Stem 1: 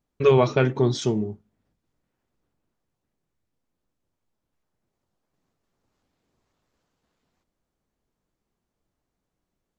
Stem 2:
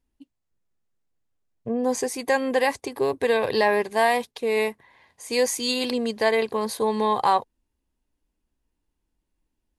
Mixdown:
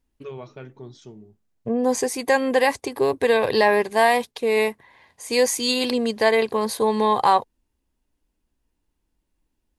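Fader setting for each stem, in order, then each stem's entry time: -19.5, +3.0 dB; 0.00, 0.00 s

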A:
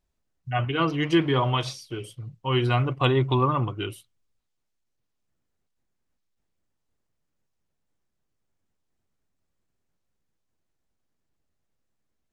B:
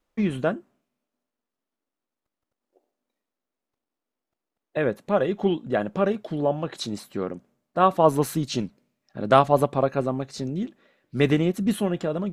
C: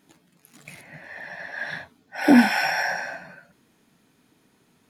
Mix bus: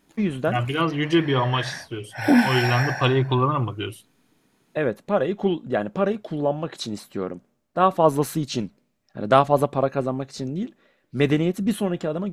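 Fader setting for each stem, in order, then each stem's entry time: +1.5, +0.5, -2.0 dB; 0.00, 0.00, 0.00 s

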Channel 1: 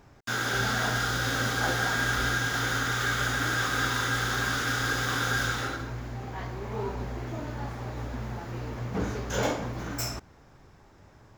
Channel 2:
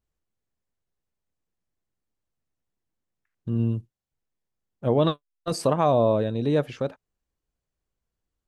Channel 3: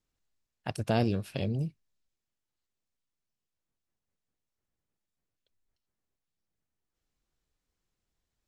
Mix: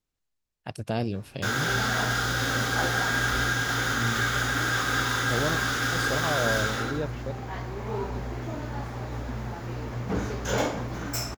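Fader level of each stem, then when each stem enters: +1.5, -9.0, -1.5 dB; 1.15, 0.45, 0.00 s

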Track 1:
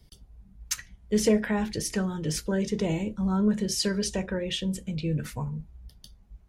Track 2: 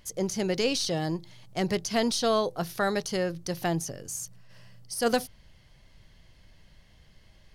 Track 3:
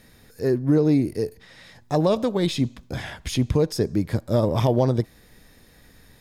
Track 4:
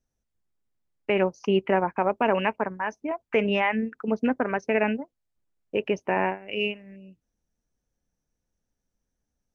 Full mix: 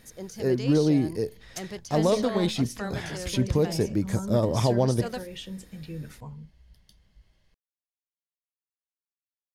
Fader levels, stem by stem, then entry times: -9.0 dB, -10.0 dB, -3.0 dB, off; 0.85 s, 0.00 s, 0.00 s, off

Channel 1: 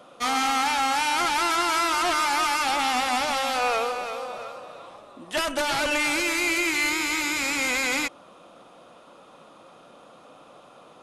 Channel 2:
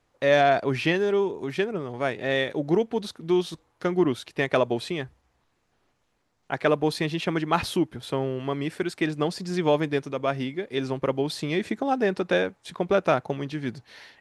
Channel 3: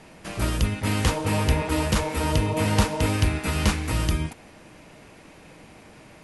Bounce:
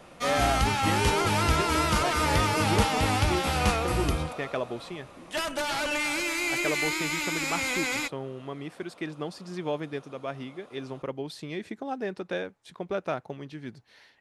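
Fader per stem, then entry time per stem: -4.5, -9.0, -4.5 dB; 0.00, 0.00, 0.00 s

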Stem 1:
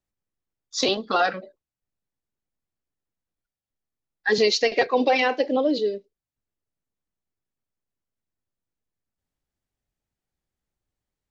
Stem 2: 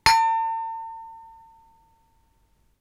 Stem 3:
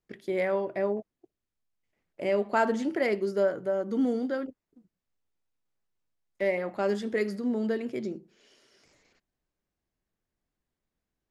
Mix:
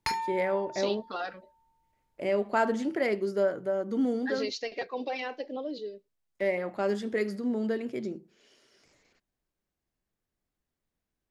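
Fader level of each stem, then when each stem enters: -14.0, -13.5, -1.0 dB; 0.00, 0.00, 0.00 s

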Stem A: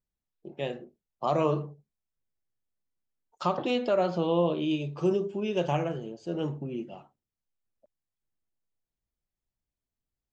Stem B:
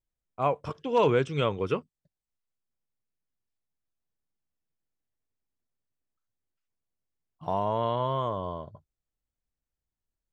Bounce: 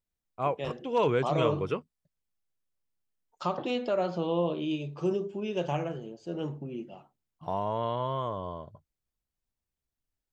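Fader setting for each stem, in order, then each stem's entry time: -3.0, -3.0 dB; 0.00, 0.00 s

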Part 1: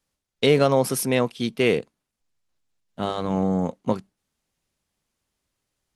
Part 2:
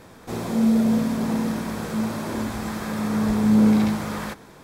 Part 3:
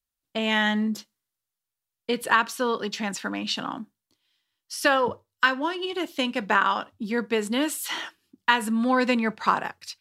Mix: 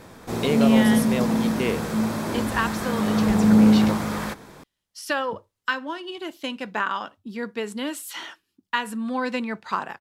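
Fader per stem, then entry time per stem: -6.0, +1.5, -4.5 dB; 0.00, 0.00, 0.25 s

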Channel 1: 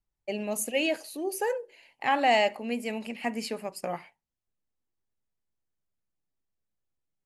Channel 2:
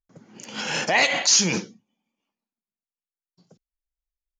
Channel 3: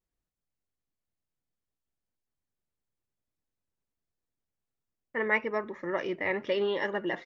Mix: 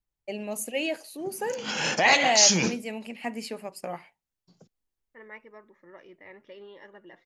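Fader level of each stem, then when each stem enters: -2.0, -1.0, -18.0 dB; 0.00, 1.10, 0.00 s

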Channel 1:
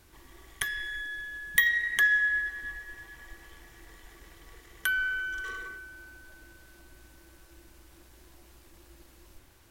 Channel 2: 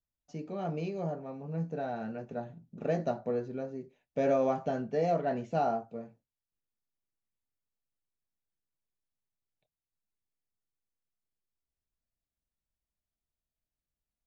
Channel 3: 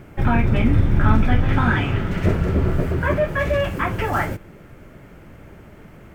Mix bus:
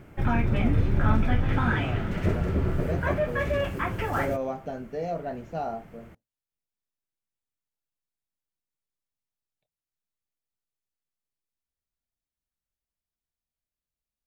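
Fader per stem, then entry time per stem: off, -2.5 dB, -6.5 dB; off, 0.00 s, 0.00 s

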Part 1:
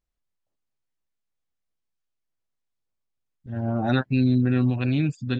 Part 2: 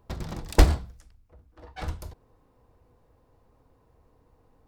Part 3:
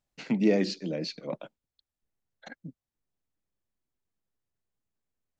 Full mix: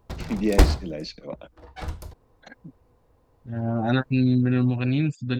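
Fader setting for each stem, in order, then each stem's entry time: 0.0, +0.5, -0.5 dB; 0.00, 0.00, 0.00 s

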